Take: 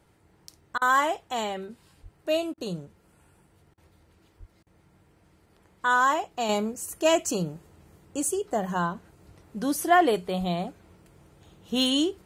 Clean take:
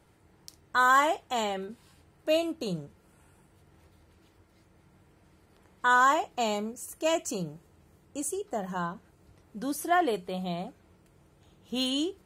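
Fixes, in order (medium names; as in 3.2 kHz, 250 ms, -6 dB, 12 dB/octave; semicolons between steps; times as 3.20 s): 2.02–2.14 s: high-pass 140 Hz 24 dB/octave; 4.39–4.51 s: high-pass 140 Hz 24 dB/octave; 10.39–10.51 s: high-pass 140 Hz 24 dB/octave; interpolate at 0.78/2.54/3.74/4.63 s, 35 ms; trim 0 dB, from 6.49 s -5.5 dB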